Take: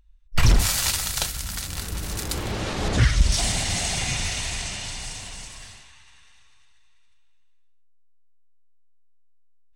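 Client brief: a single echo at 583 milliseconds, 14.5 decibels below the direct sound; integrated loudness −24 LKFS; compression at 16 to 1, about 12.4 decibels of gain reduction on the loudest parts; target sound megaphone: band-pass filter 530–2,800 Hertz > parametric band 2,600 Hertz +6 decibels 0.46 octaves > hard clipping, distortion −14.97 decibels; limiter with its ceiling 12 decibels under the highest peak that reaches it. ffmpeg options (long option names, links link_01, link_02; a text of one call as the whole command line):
ffmpeg -i in.wav -af "acompressor=threshold=-24dB:ratio=16,alimiter=limit=-23.5dB:level=0:latency=1,highpass=530,lowpass=2800,equalizer=frequency=2600:width_type=o:width=0.46:gain=6,aecho=1:1:583:0.188,asoftclip=type=hard:threshold=-34dB,volume=15dB" out.wav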